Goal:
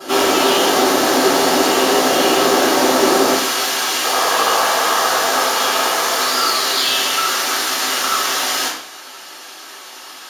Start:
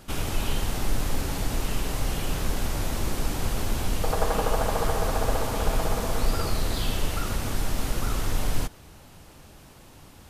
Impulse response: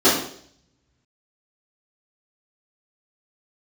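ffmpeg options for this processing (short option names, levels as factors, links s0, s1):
-filter_complex "[0:a]asetnsamples=n=441:p=0,asendcmd='3.33 highpass f 1400',highpass=530,asoftclip=type=tanh:threshold=0.0237[s0];[1:a]atrim=start_sample=2205[s1];[s0][s1]afir=irnorm=-1:irlink=0,volume=1.19"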